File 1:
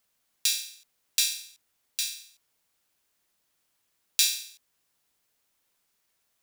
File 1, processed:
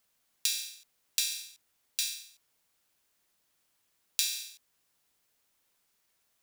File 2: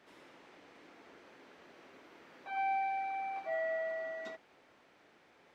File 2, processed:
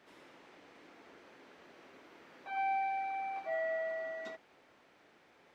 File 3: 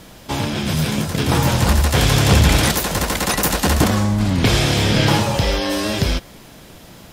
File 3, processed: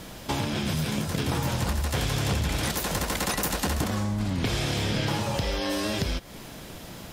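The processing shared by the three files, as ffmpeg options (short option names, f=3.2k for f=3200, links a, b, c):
-af "acompressor=threshold=-26dB:ratio=4"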